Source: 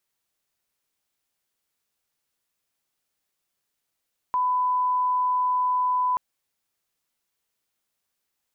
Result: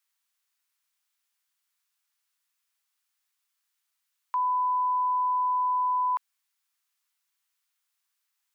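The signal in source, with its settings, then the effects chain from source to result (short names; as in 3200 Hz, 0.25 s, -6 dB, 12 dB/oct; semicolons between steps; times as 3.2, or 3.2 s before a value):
line-up tone -20 dBFS 1.83 s
HPF 970 Hz 24 dB/oct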